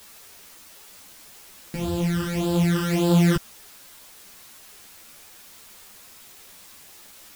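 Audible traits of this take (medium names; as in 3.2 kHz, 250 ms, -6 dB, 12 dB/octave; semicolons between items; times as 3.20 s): a buzz of ramps at a fixed pitch in blocks of 256 samples; phasing stages 12, 1.7 Hz, lowest notch 700–2100 Hz; a quantiser's noise floor 8-bit, dither triangular; a shimmering, thickened sound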